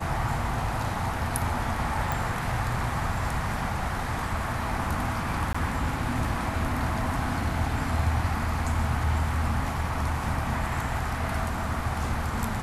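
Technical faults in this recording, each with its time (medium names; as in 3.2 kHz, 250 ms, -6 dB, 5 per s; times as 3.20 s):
2.12 s: pop
5.53–5.54 s: dropout 15 ms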